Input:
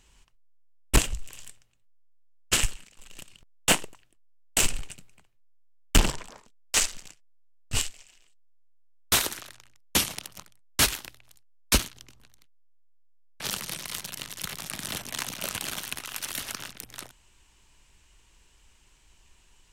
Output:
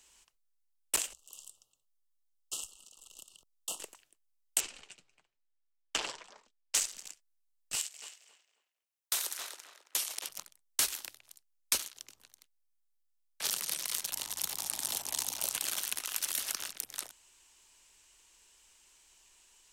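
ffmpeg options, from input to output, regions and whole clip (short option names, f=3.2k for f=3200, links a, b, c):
-filter_complex "[0:a]asettb=1/sr,asplit=3[a][b][c];[a]atrim=end=1.134[d];[b]atrim=start=1.13:end=3.8,asetpts=PTS-STARTPTS,afade=t=in:d=0.004:c=qsin,afade=t=out:st=2.666:d=0.004:c=qsin,asuperstop=centerf=1900:order=20:qfactor=1.4,acompressor=threshold=-50dB:ratio=2:attack=3.2:release=140:knee=1:detection=peak[e];[c]atrim=start=3.796[f];[d][e]acrossfade=d=0.004:c1=hsin:c2=qsin[g];[g][f]acrossfade=d=0.004:c1=qsin:c2=hsin,asettb=1/sr,asplit=3[h][i][j];[h]atrim=end=4.604[k];[i]atrim=start=4.6:end=6.75,asetpts=PTS-STARTPTS,afade=t=in:d=0.004:c=qsin,afade=t=out:st=2.146:d=0.004:c=qsin,flanger=delay=2.1:depth=5.4:regen=-38:speed=1:shape=triangular,lowpass=4.6k[l];[j]atrim=start=6.746[m];[k][l]acrossfade=d=0.004:c1=hsin:c2=qsin[n];[n][m]acrossfade=d=0.004:c1=qsin:c2=hsin,asettb=1/sr,asplit=3[o][p][q];[o]atrim=end=7.754[r];[p]atrim=start=7.75:end=10.29,asetpts=PTS-STARTPTS,afade=t=in:d=0.004:c=qsin,afade=t=out:st=2.536:d=0.004:c=qsin,acompressor=threshold=-41dB:ratio=1.5:attack=3.2:release=140:knee=1:detection=peak,highpass=450,asplit=2[s][t];[t]adelay=270,lowpass=f=2.2k:p=1,volume=-6dB,asplit=2[u][v];[v]adelay=270,lowpass=f=2.2k:p=1,volume=0.27,asplit=2[w][x];[x]adelay=270,lowpass=f=2.2k:p=1,volume=0.27[y];[s][u][w][y]amix=inputs=4:normalize=0,atrim=end_sample=112014[z];[q]atrim=start=10.286[aa];[r][z]acrossfade=d=0.004:c1=hsin:c2=qsin[ab];[ab][aa]acrossfade=d=0.004:c1=qsin:c2=hsin,asettb=1/sr,asplit=3[ac][ad][ae];[ac]atrim=end=14.114[af];[ad]atrim=start=14.11:end=15.53,asetpts=PTS-STARTPTS,afade=t=in:d=0.004:c=qsin,afade=t=out:st=1.416:d=0.004:c=qsin,equalizer=f=870:w=1.9:g=13,acrossover=split=490|3000[ag][ah][ai];[ah]acompressor=threshold=-44dB:ratio=3:attack=3.2:release=140:knee=2.83:detection=peak[aj];[ag][aj][ai]amix=inputs=3:normalize=0,aeval=exprs='val(0)+0.00501*(sin(2*PI*60*n/s)+sin(2*PI*2*60*n/s)/2+sin(2*PI*3*60*n/s)/3+sin(2*PI*4*60*n/s)/4+sin(2*PI*5*60*n/s)/5)':c=same[ak];[ae]atrim=start=15.526[al];[af][ak]acrossfade=d=0.004:c1=hsin:c2=qsin[am];[am][al]acrossfade=d=0.004:c1=qsin:c2=hsin,bass=f=250:g=-15,treble=f=4k:g=8,acrossover=split=110|360[an][ao][ap];[an]acompressor=threshold=-59dB:ratio=4[aq];[ao]acompressor=threshold=-54dB:ratio=4[ar];[ap]acompressor=threshold=-24dB:ratio=4[as];[aq][ar][as]amix=inputs=3:normalize=0,volume=-4dB"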